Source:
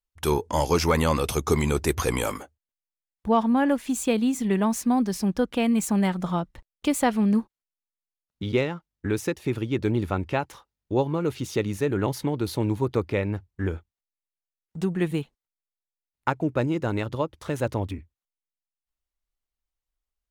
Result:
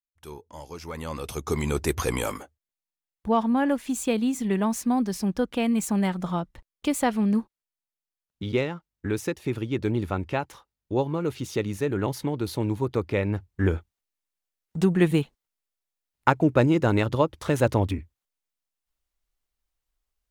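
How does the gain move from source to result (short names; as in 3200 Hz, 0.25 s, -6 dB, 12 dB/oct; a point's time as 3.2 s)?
0.76 s -18 dB
1.21 s -9 dB
1.78 s -1.5 dB
12.97 s -1.5 dB
13.7 s +5 dB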